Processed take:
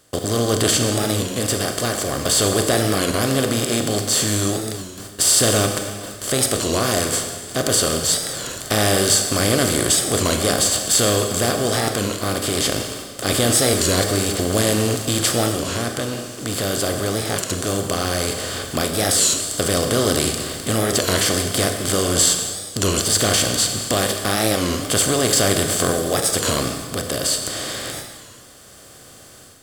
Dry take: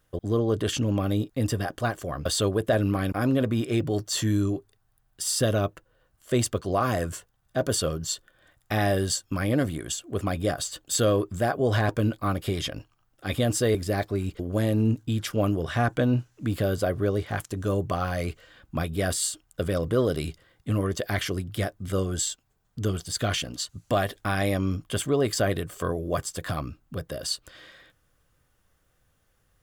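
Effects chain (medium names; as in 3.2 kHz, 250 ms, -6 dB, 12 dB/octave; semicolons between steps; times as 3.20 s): spectral levelling over time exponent 0.4; gate with hold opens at -23 dBFS; treble shelf 3.8 kHz +11 dB; level rider; Schroeder reverb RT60 1.8 s, combs from 30 ms, DRR 5 dB; warped record 33 1/3 rpm, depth 160 cents; trim -3 dB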